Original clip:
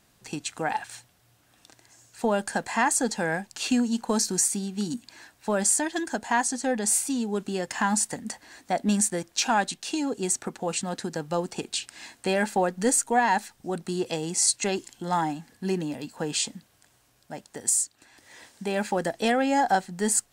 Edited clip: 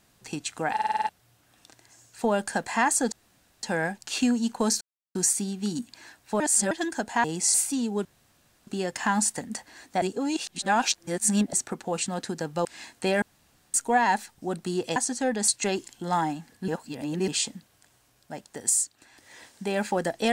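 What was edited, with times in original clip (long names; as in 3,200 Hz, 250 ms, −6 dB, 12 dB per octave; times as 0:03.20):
0:00.74: stutter in place 0.05 s, 7 plays
0:03.12: splice in room tone 0.51 s
0:04.30: splice in silence 0.34 s
0:05.55–0:05.86: reverse
0:06.39–0:06.91: swap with 0:14.18–0:14.48
0:07.42: splice in room tone 0.62 s
0:08.77–0:10.28: reverse
0:11.40–0:11.87: remove
0:12.44–0:12.96: fill with room tone
0:15.68–0:16.28: reverse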